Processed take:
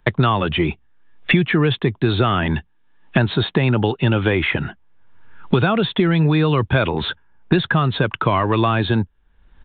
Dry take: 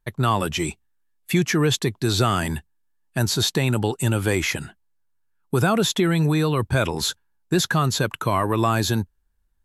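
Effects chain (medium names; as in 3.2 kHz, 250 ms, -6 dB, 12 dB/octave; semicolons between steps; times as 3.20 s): resampled via 8 kHz; three bands compressed up and down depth 100%; trim +3.5 dB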